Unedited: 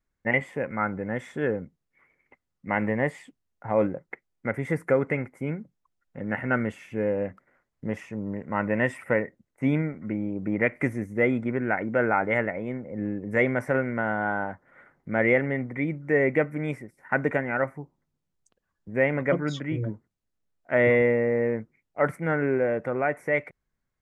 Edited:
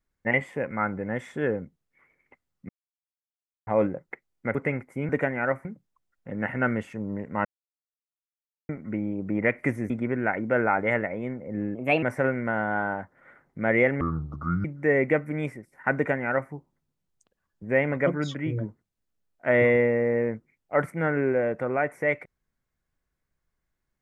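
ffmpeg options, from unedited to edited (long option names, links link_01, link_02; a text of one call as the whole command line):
ffmpeg -i in.wav -filter_complex "[0:a]asplit=14[link_01][link_02][link_03][link_04][link_05][link_06][link_07][link_08][link_09][link_10][link_11][link_12][link_13][link_14];[link_01]atrim=end=2.69,asetpts=PTS-STARTPTS,afade=type=out:start_time=2.686:duration=0.004:curve=hsin[link_15];[link_02]atrim=start=2.69:end=3.67,asetpts=PTS-STARTPTS,volume=0[link_16];[link_03]atrim=start=3.67:end=4.552,asetpts=PTS-STARTPTS,afade=type=in:duration=0.004:curve=hsin[link_17];[link_04]atrim=start=4.998:end=5.542[link_18];[link_05]atrim=start=17.208:end=17.772[link_19];[link_06]atrim=start=5.538:end=6.822[link_20];[link_07]atrim=start=8.098:end=8.62,asetpts=PTS-STARTPTS,afade=type=out:start_time=0.518:duration=0.004:curve=hsin[link_21];[link_08]atrim=start=8.62:end=9.86,asetpts=PTS-STARTPTS,volume=0[link_22];[link_09]atrim=start=9.86:end=11.072,asetpts=PTS-STARTPTS,afade=type=in:duration=0.004:curve=hsin[link_23];[link_10]atrim=start=11.338:end=13.194[link_24];[link_11]atrim=start=13.19:end=13.53,asetpts=PTS-STARTPTS,asetrate=54243,aresample=44100,atrim=end_sample=12190,asetpts=PTS-STARTPTS[link_25];[link_12]atrim=start=13.526:end=15.514[link_26];[link_13]atrim=start=15.51:end=15.9,asetpts=PTS-STARTPTS,asetrate=26901,aresample=44100,atrim=end_sample=28195,asetpts=PTS-STARTPTS[link_27];[link_14]atrim=start=15.896[link_28];[link_15][link_16][link_17]concat=n=3:v=0:a=1[link_29];[link_29][link_18]acrossfade=duration=0.004:curve1=hsin:curve2=hsin[link_30];[link_30][link_19]acrossfade=duration=0.004:curve1=hsin:curve2=hsin[link_31];[link_31][link_20]acrossfade=duration=0.004:curve1=hsin:curve2=hsin[link_32];[link_21][link_22][link_23]concat=n=3:v=0:a=1[link_33];[link_32][link_33]acrossfade=duration=0.004:curve1=hsin:curve2=hsin[link_34];[link_34][link_24]acrossfade=duration=0.004:curve1=hsin:curve2=hsin[link_35];[link_35][link_25]acrossfade=duration=0.004:curve1=hsin:curve2=hsin[link_36];[link_36][link_26]acrossfade=duration=0.004:curve1=hsin:curve2=hsin[link_37];[link_37][link_27]acrossfade=duration=0.004:curve1=hsin:curve2=hsin[link_38];[link_38][link_28]acrossfade=duration=0.004:curve1=hsin:curve2=hsin" out.wav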